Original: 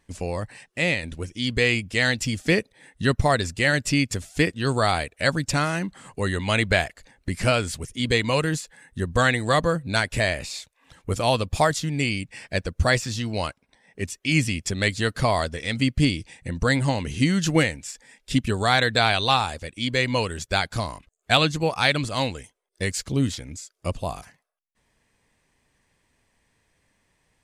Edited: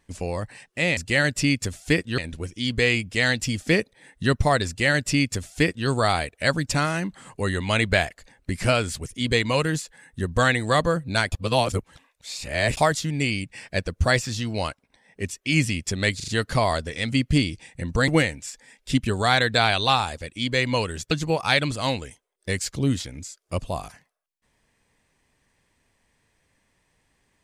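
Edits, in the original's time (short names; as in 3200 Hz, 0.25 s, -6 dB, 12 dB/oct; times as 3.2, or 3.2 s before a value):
3.46–4.67 copy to 0.97
10.11–11.56 reverse
14.95 stutter 0.04 s, 4 plays
16.75–17.49 cut
20.52–21.44 cut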